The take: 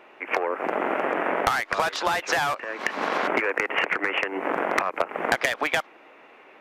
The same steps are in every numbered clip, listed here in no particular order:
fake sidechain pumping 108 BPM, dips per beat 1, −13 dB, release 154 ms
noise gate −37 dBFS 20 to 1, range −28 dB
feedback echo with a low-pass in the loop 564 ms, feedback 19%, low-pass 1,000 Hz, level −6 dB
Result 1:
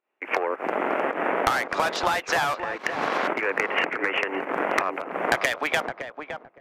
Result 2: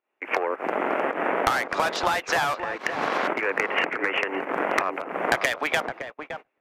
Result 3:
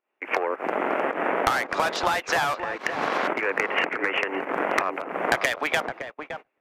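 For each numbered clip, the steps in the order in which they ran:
fake sidechain pumping, then noise gate, then feedback echo with a low-pass in the loop
fake sidechain pumping, then feedback echo with a low-pass in the loop, then noise gate
feedback echo with a low-pass in the loop, then fake sidechain pumping, then noise gate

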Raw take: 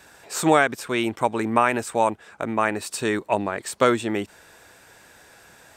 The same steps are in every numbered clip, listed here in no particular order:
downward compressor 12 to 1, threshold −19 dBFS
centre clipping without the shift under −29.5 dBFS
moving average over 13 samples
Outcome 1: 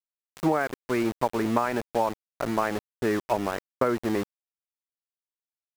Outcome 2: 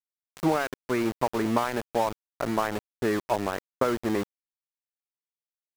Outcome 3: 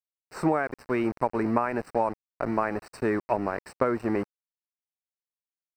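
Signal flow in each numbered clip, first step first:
moving average, then centre clipping without the shift, then downward compressor
downward compressor, then moving average, then centre clipping without the shift
centre clipping without the shift, then downward compressor, then moving average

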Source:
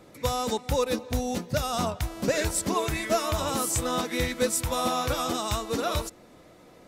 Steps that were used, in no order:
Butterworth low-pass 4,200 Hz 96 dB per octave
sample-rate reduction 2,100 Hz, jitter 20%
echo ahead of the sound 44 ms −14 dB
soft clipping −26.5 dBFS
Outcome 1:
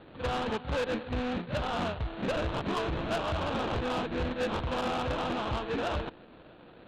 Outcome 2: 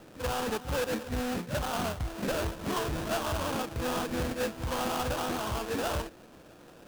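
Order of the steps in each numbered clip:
echo ahead of the sound, then sample-rate reduction, then Butterworth low-pass, then soft clipping
echo ahead of the sound, then soft clipping, then Butterworth low-pass, then sample-rate reduction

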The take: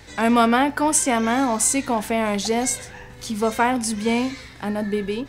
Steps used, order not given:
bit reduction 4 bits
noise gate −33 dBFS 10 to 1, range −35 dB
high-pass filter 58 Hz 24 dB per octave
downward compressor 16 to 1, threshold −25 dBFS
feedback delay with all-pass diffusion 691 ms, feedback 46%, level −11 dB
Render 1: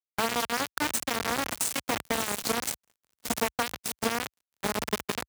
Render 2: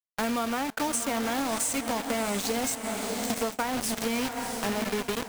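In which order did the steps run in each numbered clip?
feedback delay with all-pass diffusion, then downward compressor, then bit reduction, then high-pass filter, then noise gate
high-pass filter, then bit reduction, then feedback delay with all-pass diffusion, then downward compressor, then noise gate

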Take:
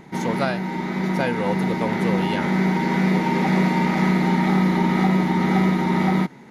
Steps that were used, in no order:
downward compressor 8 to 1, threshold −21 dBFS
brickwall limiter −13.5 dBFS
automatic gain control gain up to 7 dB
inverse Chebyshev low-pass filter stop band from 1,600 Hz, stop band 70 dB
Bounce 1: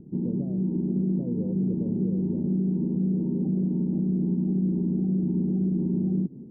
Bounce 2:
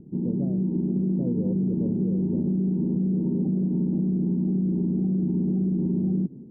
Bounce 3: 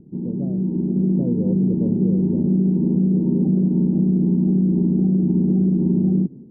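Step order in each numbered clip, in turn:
brickwall limiter, then automatic gain control, then downward compressor, then inverse Chebyshev low-pass filter
automatic gain control, then inverse Chebyshev low-pass filter, then brickwall limiter, then downward compressor
inverse Chebyshev low-pass filter, then brickwall limiter, then downward compressor, then automatic gain control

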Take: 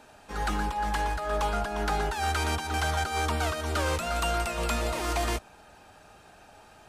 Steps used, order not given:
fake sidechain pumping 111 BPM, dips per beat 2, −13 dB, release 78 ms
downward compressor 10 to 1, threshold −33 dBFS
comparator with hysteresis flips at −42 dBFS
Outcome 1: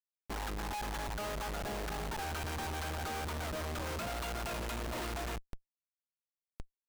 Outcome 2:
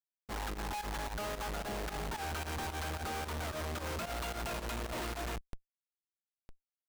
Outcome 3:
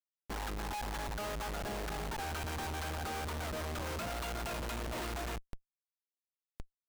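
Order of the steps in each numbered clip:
fake sidechain pumping, then downward compressor, then comparator with hysteresis
downward compressor, then comparator with hysteresis, then fake sidechain pumping
downward compressor, then fake sidechain pumping, then comparator with hysteresis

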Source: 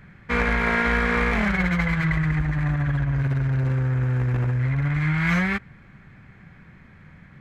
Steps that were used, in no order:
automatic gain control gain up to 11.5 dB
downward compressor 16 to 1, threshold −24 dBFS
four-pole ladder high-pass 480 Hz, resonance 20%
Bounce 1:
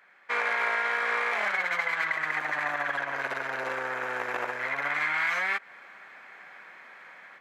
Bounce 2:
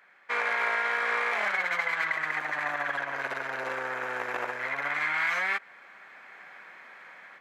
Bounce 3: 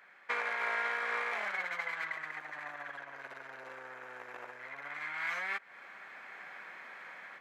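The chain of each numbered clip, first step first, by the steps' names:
four-pole ladder high-pass, then automatic gain control, then downward compressor
automatic gain control, then four-pole ladder high-pass, then downward compressor
automatic gain control, then downward compressor, then four-pole ladder high-pass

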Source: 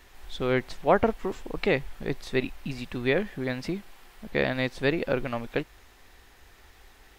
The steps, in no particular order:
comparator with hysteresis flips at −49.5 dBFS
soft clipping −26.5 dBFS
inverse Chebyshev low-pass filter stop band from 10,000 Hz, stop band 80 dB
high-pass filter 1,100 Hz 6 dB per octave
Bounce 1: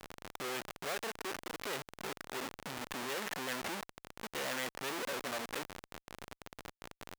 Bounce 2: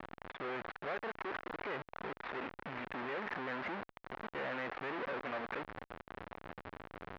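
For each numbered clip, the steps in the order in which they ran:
inverse Chebyshev low-pass filter, then comparator with hysteresis, then high-pass filter, then soft clipping
comparator with hysteresis, then inverse Chebyshev low-pass filter, then soft clipping, then high-pass filter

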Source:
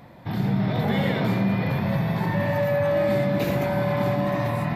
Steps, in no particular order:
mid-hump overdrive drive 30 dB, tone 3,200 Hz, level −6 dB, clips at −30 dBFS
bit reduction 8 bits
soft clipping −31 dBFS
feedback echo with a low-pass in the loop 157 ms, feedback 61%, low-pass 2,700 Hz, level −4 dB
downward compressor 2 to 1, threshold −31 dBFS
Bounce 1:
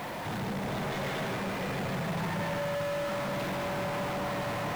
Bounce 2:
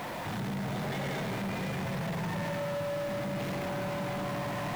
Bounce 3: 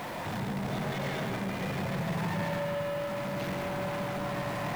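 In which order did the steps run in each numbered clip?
soft clipping, then downward compressor, then feedback echo with a low-pass in the loop, then mid-hump overdrive, then bit reduction
mid-hump overdrive, then feedback echo with a low-pass in the loop, then soft clipping, then bit reduction, then downward compressor
mid-hump overdrive, then soft clipping, then downward compressor, then bit reduction, then feedback echo with a low-pass in the loop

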